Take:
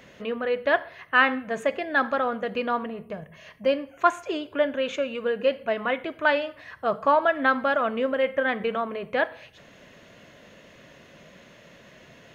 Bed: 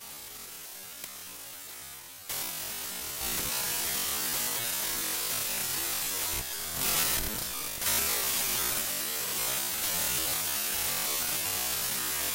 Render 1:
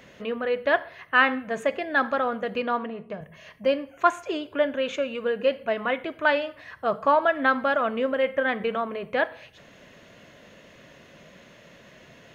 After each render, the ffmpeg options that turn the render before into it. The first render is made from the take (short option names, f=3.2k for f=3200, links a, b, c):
-filter_complex "[0:a]asettb=1/sr,asplit=3[a][b][c];[a]atrim=end=2.624[d];[b]atrim=start=2.62:end=3.21,asetpts=PTS-STARTPTS,afade=t=in:d=0.004:c=qsin,afade=t=out:st=0.586:d=0.004:c=qsin,highpass=130,lowpass=6.1k[e];[c]atrim=start=3.206[f];[d][e]acrossfade=d=0.004:c1=hsin:c2=qsin[g];[g][f]acrossfade=d=0.004:c1=qsin:c2=hsin"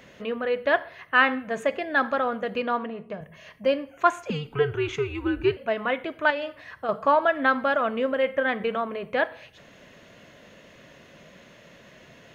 -filter_complex "[0:a]asettb=1/sr,asplit=3[a][b][c];[a]atrim=end=4.304[d];[b]atrim=start=4.3:end=5.57,asetpts=PTS-STARTPTS,afade=t=in:d=0.004:c=qsin,afade=t=out:st=1.266:d=0.004:c=qsin,afreqshift=-150[e];[c]atrim=start=5.566[f];[d][e]acrossfade=d=0.004:c1=hsin:c2=qsin[g];[g][f]acrossfade=d=0.004:c1=qsin:c2=hsin,asettb=1/sr,asplit=3[h][i][j];[h]atrim=end=6.304[k];[i]atrim=start=6.3:end=6.89,asetpts=PTS-STARTPTS,afade=t=in:d=0.004:c=qsin,afade=t=out:st=0.586:d=0.004:c=qsin,acompressor=threshold=-25dB:ratio=6:attack=3.2:release=140:knee=1:detection=peak[l];[j]atrim=start=6.886[m];[k][l]acrossfade=d=0.004:c1=hsin:c2=qsin[n];[n][m]acrossfade=d=0.004:c1=qsin:c2=hsin"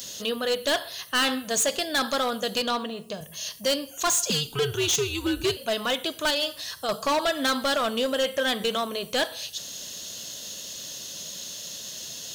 -af "aexciter=amount=13.6:drive=8.5:freq=3.5k,asoftclip=type=hard:threshold=-20dB"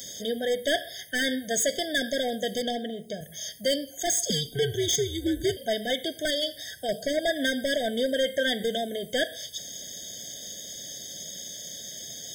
-af "afftfilt=real='re*eq(mod(floor(b*sr/1024/760),2),0)':imag='im*eq(mod(floor(b*sr/1024/760),2),0)':win_size=1024:overlap=0.75"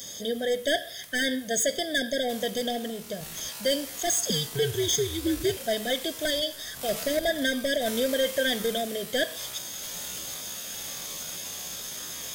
-filter_complex "[1:a]volume=-9dB[a];[0:a][a]amix=inputs=2:normalize=0"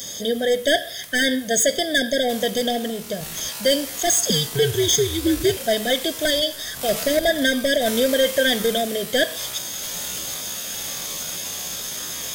-af "volume=7dB"